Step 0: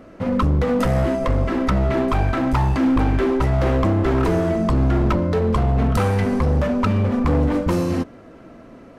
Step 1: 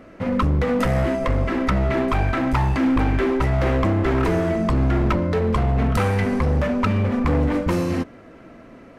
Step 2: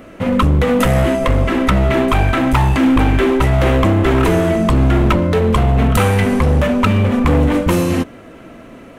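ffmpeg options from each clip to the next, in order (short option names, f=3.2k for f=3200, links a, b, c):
-af "equalizer=f=2.1k:w=1.5:g=5,volume=-1.5dB"
-af "aexciter=amount=1.1:drive=7.6:freq=2.7k,volume=6.5dB"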